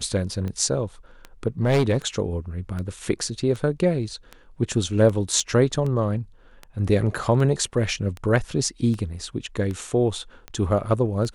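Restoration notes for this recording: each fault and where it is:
tick 78 rpm -20 dBFS
1.62–1.98 s: clipped -14.5 dBFS
5.40 s: dropout 3.3 ms

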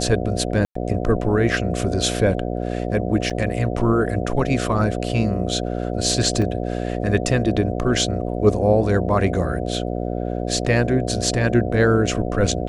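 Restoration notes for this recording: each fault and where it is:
buzz 60 Hz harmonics 12 -25 dBFS
0.65–0.75 s: dropout 104 ms
3.30–3.31 s: dropout 6.4 ms
6.42 s: dropout 2.5 ms

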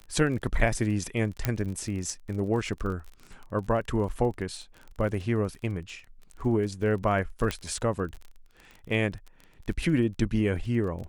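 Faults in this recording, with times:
crackle 31 per s -36 dBFS
1.45 s: pop -10 dBFS
7.51 s: pop -14 dBFS

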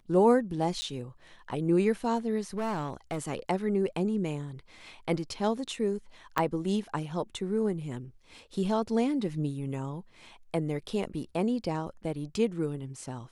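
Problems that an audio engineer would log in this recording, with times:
0.81–0.82 s: dropout 10 ms
2.57–3.28 s: clipped -28 dBFS
6.38 s: dropout 4.9 ms

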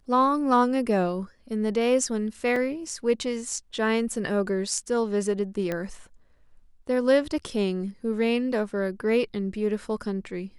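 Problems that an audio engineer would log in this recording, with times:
2.56 s: dropout 3.2 ms
5.72 s: pop -16 dBFS

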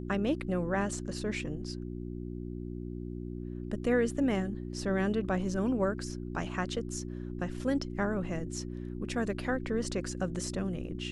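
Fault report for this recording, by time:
hum 60 Hz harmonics 6 -39 dBFS

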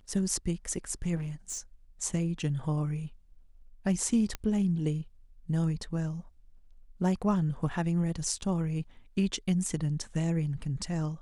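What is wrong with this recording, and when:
1.15–1.60 s: clipped -32 dBFS
4.35 s: pop -18 dBFS

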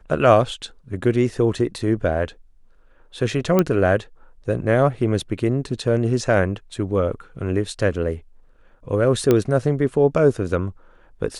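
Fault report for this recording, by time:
3.59 s: pop -5 dBFS
9.31 s: pop -5 dBFS

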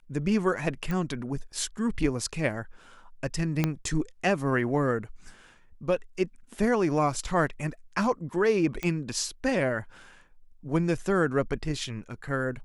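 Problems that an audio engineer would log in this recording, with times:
0.91 s: pop -19 dBFS
3.64 s: pop -11 dBFS
8.83 s: pop -17 dBFS

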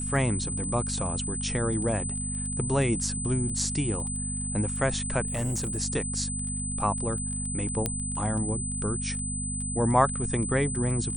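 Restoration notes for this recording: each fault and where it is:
crackle 15 per s -35 dBFS
hum 50 Hz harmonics 5 -34 dBFS
whine 8.1 kHz -32 dBFS
5.26–5.78 s: clipped -25 dBFS
7.86 s: pop -11 dBFS

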